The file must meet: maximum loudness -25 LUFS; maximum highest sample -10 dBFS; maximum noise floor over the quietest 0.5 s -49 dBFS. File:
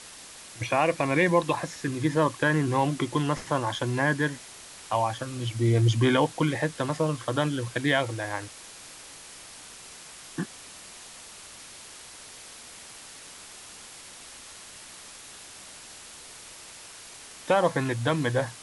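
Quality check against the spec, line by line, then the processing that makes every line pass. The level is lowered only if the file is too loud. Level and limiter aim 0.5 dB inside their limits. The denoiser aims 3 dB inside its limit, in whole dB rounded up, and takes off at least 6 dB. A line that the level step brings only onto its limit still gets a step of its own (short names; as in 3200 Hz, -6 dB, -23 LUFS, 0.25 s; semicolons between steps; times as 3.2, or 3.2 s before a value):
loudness -26.5 LUFS: OK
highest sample -9.5 dBFS: fail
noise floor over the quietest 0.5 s -46 dBFS: fail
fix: denoiser 6 dB, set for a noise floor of -46 dBFS; limiter -10.5 dBFS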